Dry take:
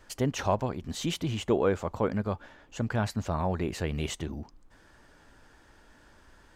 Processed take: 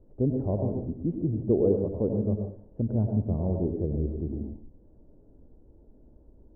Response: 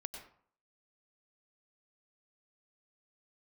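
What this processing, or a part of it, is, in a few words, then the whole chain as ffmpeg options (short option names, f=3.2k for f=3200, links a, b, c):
next room: -filter_complex "[0:a]lowpass=f=500:w=0.5412,lowpass=f=500:w=1.3066[a];[1:a]atrim=start_sample=2205[b];[a][b]afir=irnorm=-1:irlink=0,volume=6.5dB"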